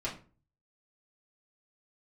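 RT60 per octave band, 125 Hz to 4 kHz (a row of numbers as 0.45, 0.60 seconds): 0.65, 0.45, 0.40, 0.35, 0.30, 0.25 seconds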